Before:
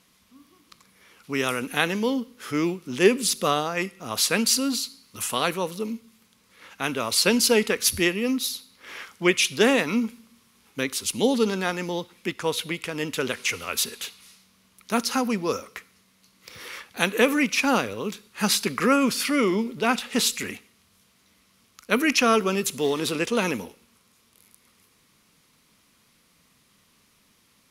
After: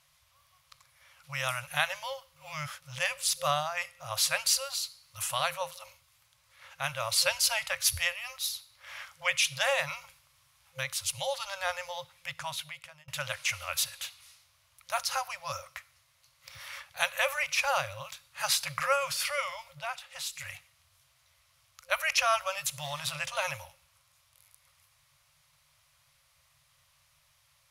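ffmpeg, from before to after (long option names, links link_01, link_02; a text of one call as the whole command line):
ffmpeg -i in.wav -filter_complex "[0:a]asplit=6[link_01][link_02][link_03][link_04][link_05][link_06];[link_01]atrim=end=2.362[link_07];[link_02]atrim=start=2.358:end=2.822,asetpts=PTS-STARTPTS,areverse[link_08];[link_03]atrim=start=2.818:end=13.08,asetpts=PTS-STARTPTS,afade=type=out:start_time=9.552:duration=0.71[link_09];[link_04]atrim=start=13.08:end=19.95,asetpts=PTS-STARTPTS,afade=type=in:duration=0.004:curve=hsin,afade=type=out:start_time=6.63:duration=0.24:curve=qua:silence=0.354813[link_10];[link_05]atrim=start=19.95:end=20.27,asetpts=PTS-STARTPTS,volume=-9dB[link_11];[link_06]atrim=start=20.27,asetpts=PTS-STARTPTS,afade=type=in:duration=0.24:curve=qua:silence=0.354813[link_12];[link_07][link_08]acrossfade=duration=0.004:curve1=hsin:curve2=hsin[link_13];[link_09][link_10][link_11][link_12]concat=n=4:v=0:a=1[link_14];[link_13][link_14]acrossfade=duration=0.004:curve1=hsin:curve2=hsin,afftfilt=real='re*(1-between(b*sr/4096,160,520))':imag='im*(1-between(b*sr/4096,160,520))':win_size=4096:overlap=0.75,equalizer=frequency=77:width_type=o:width=1.4:gain=3.5,volume=-4.5dB" out.wav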